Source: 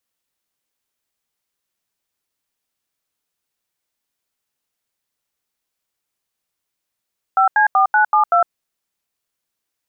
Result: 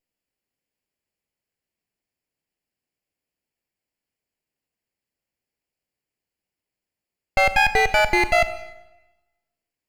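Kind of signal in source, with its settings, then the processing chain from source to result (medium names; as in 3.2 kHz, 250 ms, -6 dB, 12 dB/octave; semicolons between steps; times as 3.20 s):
DTMF "5C4972", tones 108 ms, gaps 82 ms, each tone -13 dBFS
comb filter that takes the minimum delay 0.41 ms; Schroeder reverb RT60 1.1 s, combs from 29 ms, DRR 12 dB; tape noise reduction on one side only decoder only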